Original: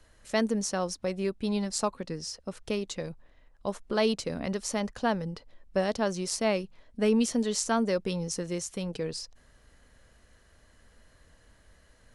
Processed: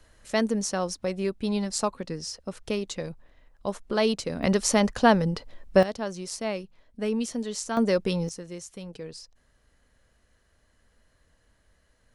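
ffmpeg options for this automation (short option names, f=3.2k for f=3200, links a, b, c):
-af "asetnsamples=n=441:p=0,asendcmd='4.43 volume volume 9dB;5.83 volume volume -3.5dB;7.77 volume volume 4.5dB;8.29 volume volume -6dB',volume=2dB"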